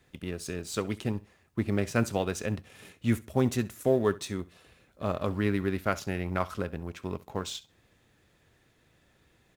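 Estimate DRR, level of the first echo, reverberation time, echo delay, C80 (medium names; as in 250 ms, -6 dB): no reverb, -20.0 dB, no reverb, 67 ms, no reverb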